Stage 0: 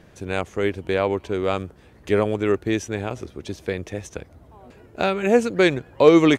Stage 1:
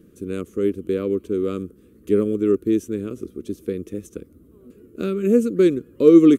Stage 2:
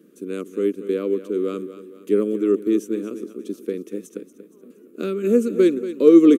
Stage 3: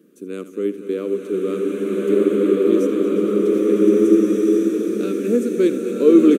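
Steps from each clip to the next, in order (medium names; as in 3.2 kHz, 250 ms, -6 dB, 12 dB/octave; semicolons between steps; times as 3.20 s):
FFT filter 140 Hz 0 dB, 200 Hz +10 dB, 320 Hz +11 dB, 470 Hz +6 dB, 830 Hz -29 dB, 1.2 kHz -1 dB, 1.8 kHz -11 dB, 2.9 kHz -5 dB, 5.1 kHz -6 dB, 12 kHz +12 dB; trim -6 dB
high-pass 210 Hz 24 dB/octave; on a send: feedback delay 234 ms, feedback 45%, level -13 dB
delay 79 ms -14.5 dB; swelling reverb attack 1740 ms, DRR -7 dB; trim -1 dB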